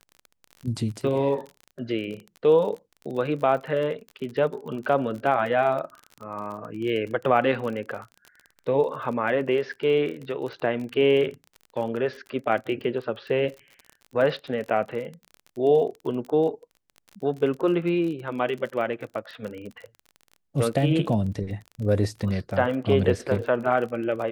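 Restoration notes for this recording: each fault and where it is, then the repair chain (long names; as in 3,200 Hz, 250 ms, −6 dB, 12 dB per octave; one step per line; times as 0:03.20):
surface crackle 34 per second −33 dBFS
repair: click removal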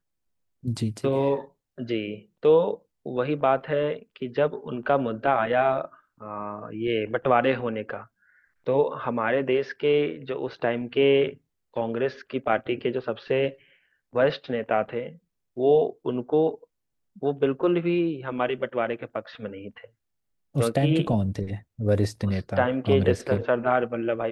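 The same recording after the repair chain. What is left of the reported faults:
none of them is left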